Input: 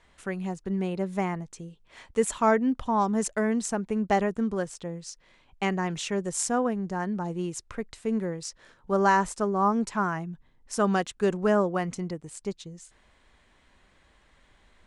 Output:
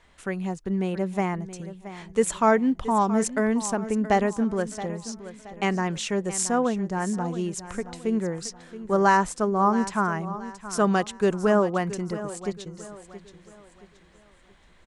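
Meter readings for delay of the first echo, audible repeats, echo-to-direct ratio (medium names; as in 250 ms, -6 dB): 674 ms, 3, -13.5 dB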